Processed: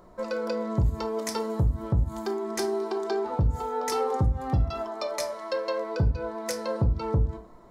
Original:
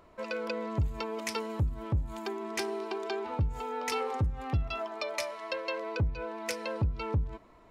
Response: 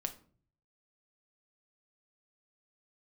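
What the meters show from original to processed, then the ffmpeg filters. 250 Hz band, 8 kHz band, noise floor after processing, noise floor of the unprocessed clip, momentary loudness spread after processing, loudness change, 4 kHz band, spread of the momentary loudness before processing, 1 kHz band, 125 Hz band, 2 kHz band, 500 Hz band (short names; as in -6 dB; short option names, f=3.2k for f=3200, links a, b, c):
+6.5 dB, +5.0 dB, -50 dBFS, -57 dBFS, 6 LU, +5.5 dB, +1.5 dB, 4 LU, +4.5 dB, +5.5 dB, -2.0 dB, +6.5 dB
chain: -filter_complex "[0:a]equalizer=f=2.6k:t=o:w=0.83:g=-15[a];[1:a]atrim=start_sample=2205,atrim=end_sample=6174[b];[a][b]afir=irnorm=-1:irlink=0,volume=6.5dB"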